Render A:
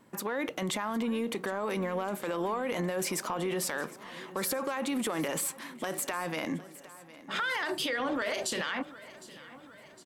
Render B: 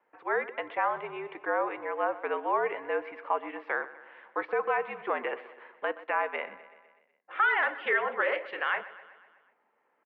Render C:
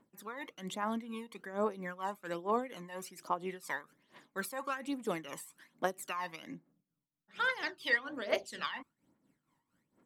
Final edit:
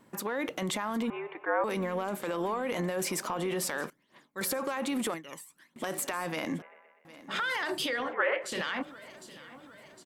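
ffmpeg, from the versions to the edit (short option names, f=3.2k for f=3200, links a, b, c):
-filter_complex "[1:a]asplit=3[a][b][c];[2:a]asplit=2[d][e];[0:a]asplit=6[f][g][h][i][j][k];[f]atrim=end=1.102[l];[a]atrim=start=1.098:end=1.642[m];[g]atrim=start=1.638:end=3.902[n];[d]atrim=start=3.898:end=4.412[o];[h]atrim=start=4.408:end=5.142[p];[e]atrim=start=5.138:end=5.762[q];[i]atrim=start=5.758:end=6.622[r];[b]atrim=start=6.618:end=7.052[s];[j]atrim=start=7.048:end=8.15[t];[c]atrim=start=7.99:end=8.57[u];[k]atrim=start=8.41[v];[l][m]acrossfade=d=0.004:c1=hsin:c2=hsin[w];[w][n]acrossfade=d=0.004:c1=hsin:c2=hsin[x];[x][o]acrossfade=d=0.004:c1=hsin:c2=hsin[y];[y][p]acrossfade=d=0.004:c1=hsin:c2=hsin[z];[z][q]acrossfade=d=0.004:c1=hsin:c2=hsin[aa];[aa][r]acrossfade=d=0.004:c1=hsin:c2=hsin[ab];[ab][s]acrossfade=d=0.004:c1=hsin:c2=hsin[ac];[ac][t]acrossfade=d=0.004:c1=hsin:c2=hsin[ad];[ad][u]acrossfade=d=0.16:c1=tri:c2=tri[ae];[ae][v]acrossfade=d=0.16:c1=tri:c2=tri"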